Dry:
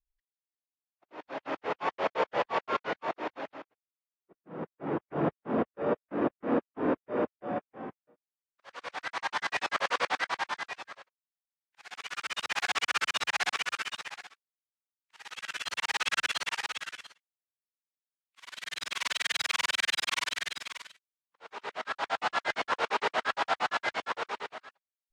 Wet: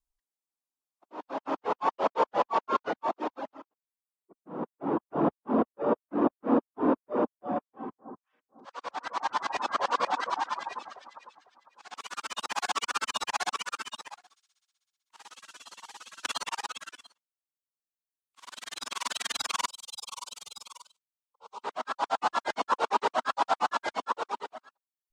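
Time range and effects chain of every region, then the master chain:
0:02.87–0:03.40: notch filter 980 Hz, Q 17 + multiband upward and downward compressor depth 70%
0:07.63–0:11.98: low-pass filter 6,900 Hz + delay that swaps between a low-pass and a high-pass 251 ms, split 1,600 Hz, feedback 51%, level −5 dB
0:14.18–0:16.25: downward compressor 4 to 1, threshold −46 dBFS + delay with a high-pass on its return 63 ms, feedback 83%, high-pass 3,500 Hz, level −3 dB
0:19.67–0:21.64: downward compressor 2 to 1, threshold −35 dBFS + parametric band 680 Hz −13.5 dB 0.3 octaves + phaser with its sweep stopped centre 720 Hz, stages 4
whole clip: reverb reduction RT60 1.5 s; graphic EQ with 10 bands 125 Hz −6 dB, 250 Hz +7 dB, 1,000 Hz +8 dB, 2,000 Hz −8 dB, 8,000 Hz +5 dB

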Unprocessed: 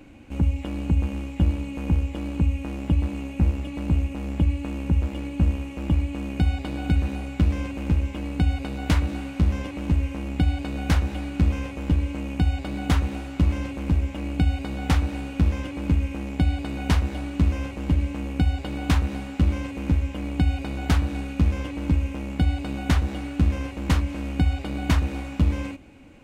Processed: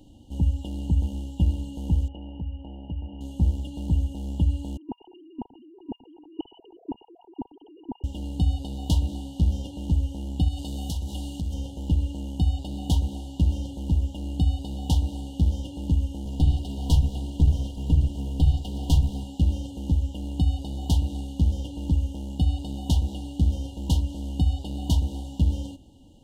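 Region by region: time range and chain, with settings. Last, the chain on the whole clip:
0:02.08–0:03.21: variable-slope delta modulation 32 kbit/s + Chebyshev low-pass with heavy ripple 3,000 Hz, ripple 6 dB + downward compressor 2 to 1, threshold −29 dBFS
0:04.77–0:08.04: three sine waves on the formant tracks + output level in coarse steps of 21 dB + phaser with its sweep stopped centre 880 Hz, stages 8
0:10.48–0:11.54: high-shelf EQ 3,500 Hz +8.5 dB + downward compressor, threshold −24 dBFS
0:16.25–0:19.24: lower of the sound and its delayed copy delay 4.2 ms + parametric band 82 Hz +9.5 dB 0.85 octaves
whole clip: brick-wall band-stop 970–2,800 Hz; parametric band 530 Hz −7.5 dB 2.5 octaves

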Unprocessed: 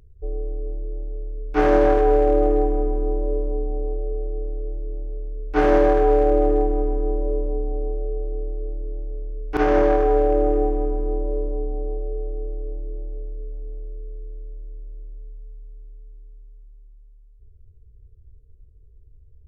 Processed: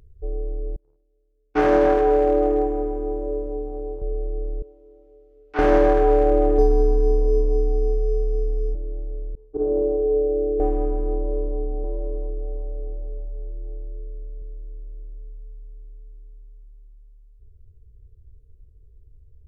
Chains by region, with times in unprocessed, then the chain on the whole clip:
0:00.76–0:04.02: high-pass filter 90 Hz 6 dB per octave + noise gate −31 dBFS, range −30 dB
0:04.62–0:05.59: high-pass filter 1,100 Hz 6 dB per octave + high-frequency loss of the air 130 metres + one half of a high-frequency compander encoder only
0:06.58–0:08.75: comb filter 4.4 ms, depth 95% + linearly interpolated sample-rate reduction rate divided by 8×
0:09.35–0:10.60: transistor ladder low-pass 510 Hz, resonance 60% + downward expander −31 dBFS
0:11.15–0:14.42: high-shelf EQ 2,800 Hz −9 dB + single-tap delay 689 ms −6.5 dB
whole clip: no processing

